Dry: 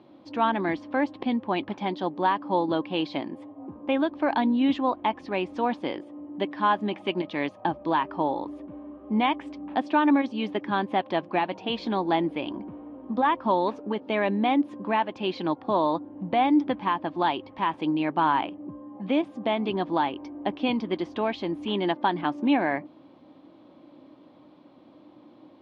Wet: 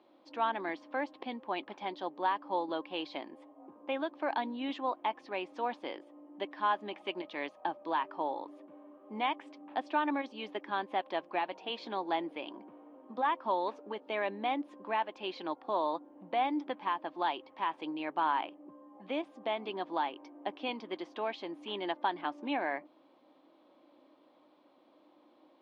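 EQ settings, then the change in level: HPF 410 Hz 12 dB/oct; -7.0 dB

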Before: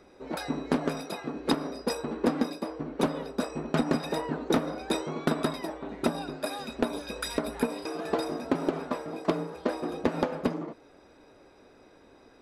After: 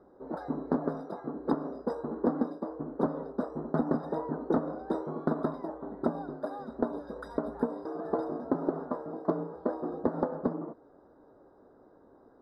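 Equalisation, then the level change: Butterworth band-stop 2600 Hz, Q 0.72; air absorption 490 m; low shelf 110 Hz -8 dB; 0.0 dB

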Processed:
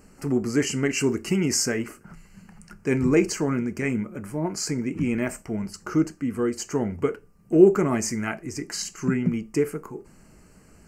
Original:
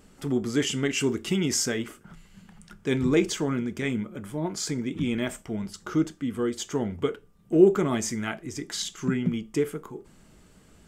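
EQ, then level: Butterworth band-stop 3500 Hz, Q 2.3; +2.5 dB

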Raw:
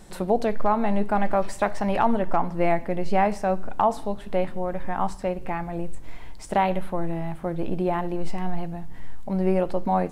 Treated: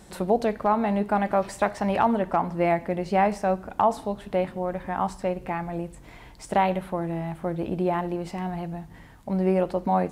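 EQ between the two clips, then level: HPF 45 Hz; 0.0 dB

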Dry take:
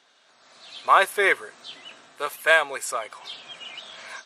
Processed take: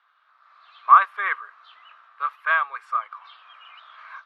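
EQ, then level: resonant high-pass 1200 Hz, resonance Q 6.5; air absorption 360 m; -6.5 dB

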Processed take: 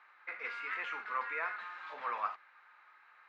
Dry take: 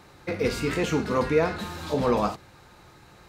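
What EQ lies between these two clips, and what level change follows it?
Butterworth band-pass 1600 Hz, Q 1.3; -3.0 dB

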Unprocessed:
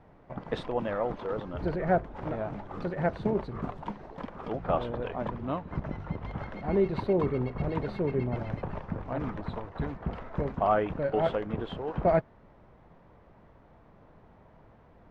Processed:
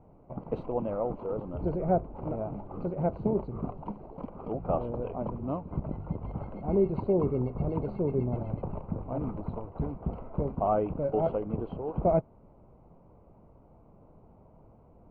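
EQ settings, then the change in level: running mean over 25 samples; +1.0 dB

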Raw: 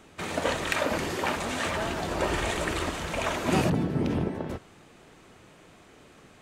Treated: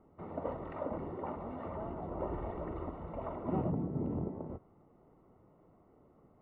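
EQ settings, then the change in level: polynomial smoothing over 65 samples; air absorption 470 m; -8.0 dB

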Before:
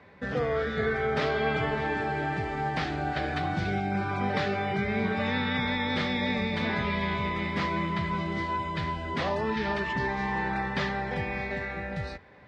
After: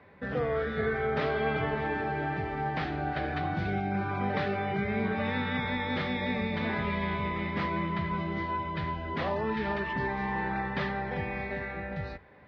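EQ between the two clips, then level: air absorption 200 m; notches 60/120/180/240 Hz; -1.0 dB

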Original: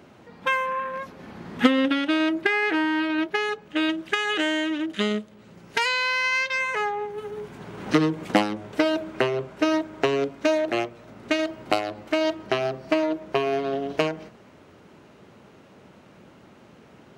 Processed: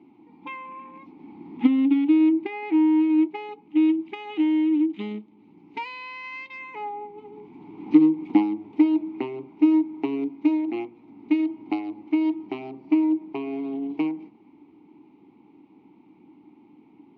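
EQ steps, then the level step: vowel filter u; tilt shelf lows +9.5 dB, about 1300 Hz; bell 4000 Hz +12.5 dB 1.8 oct; 0.0 dB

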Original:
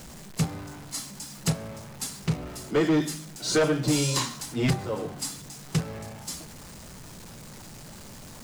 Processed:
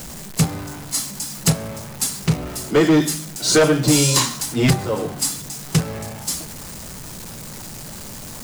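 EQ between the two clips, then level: high shelf 8100 Hz +8 dB; +8.0 dB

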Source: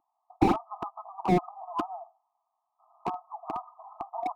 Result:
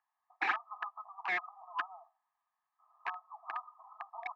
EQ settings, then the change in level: resonant high-pass 1700 Hz, resonance Q 10; air absorption 190 m; 0.0 dB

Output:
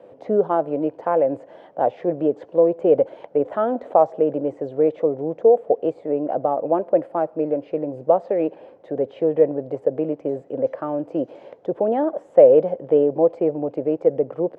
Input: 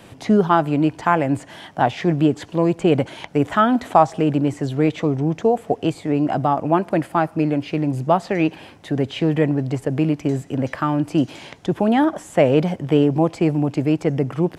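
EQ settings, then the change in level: band-pass 520 Hz, Q 5.3; +9.0 dB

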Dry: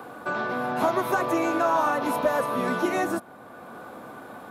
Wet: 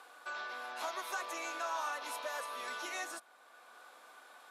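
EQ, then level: BPF 350–6000 Hz; differentiator; +2.5 dB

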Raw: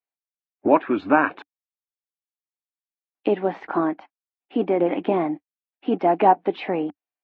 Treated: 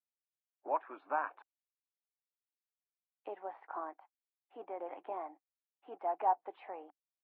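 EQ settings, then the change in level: HPF 430 Hz 12 dB/oct; synth low-pass 910 Hz, resonance Q 1.6; differentiator; +1.0 dB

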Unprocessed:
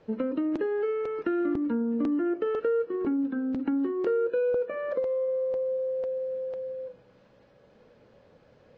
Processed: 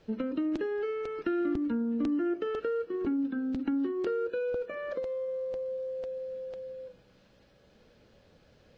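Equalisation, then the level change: graphic EQ 125/250/500/1000/2000 Hz -7/-5/-9/-9/-5 dB; +6.0 dB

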